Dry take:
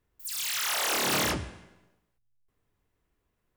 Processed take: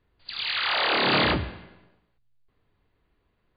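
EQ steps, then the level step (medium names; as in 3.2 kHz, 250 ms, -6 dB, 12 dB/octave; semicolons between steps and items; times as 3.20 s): brick-wall FIR low-pass 4.8 kHz; +6.5 dB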